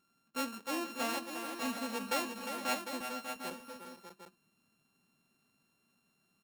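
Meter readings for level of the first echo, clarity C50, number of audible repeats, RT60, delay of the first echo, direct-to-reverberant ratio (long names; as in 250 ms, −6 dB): −8.0 dB, no reverb audible, 4, no reverb audible, 353 ms, no reverb audible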